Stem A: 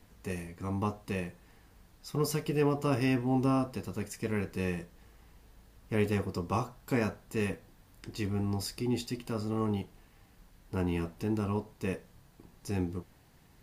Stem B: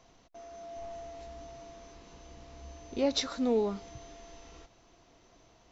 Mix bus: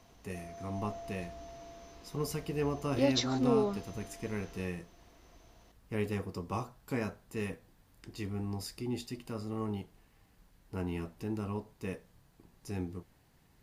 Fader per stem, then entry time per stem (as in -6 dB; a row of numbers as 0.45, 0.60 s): -5.0, -1.0 dB; 0.00, 0.00 s